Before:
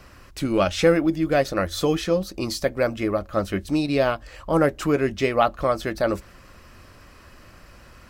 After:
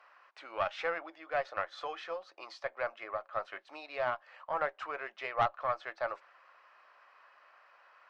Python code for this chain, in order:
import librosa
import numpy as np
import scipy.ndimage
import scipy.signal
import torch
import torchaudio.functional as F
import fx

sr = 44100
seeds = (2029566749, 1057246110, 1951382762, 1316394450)

y = scipy.signal.sosfilt(scipy.signal.butter(4, 770.0, 'highpass', fs=sr, output='sos'), x)
y = fx.spacing_loss(y, sr, db_at_10k=42)
y = fx.tube_stage(y, sr, drive_db=17.0, bias=0.4)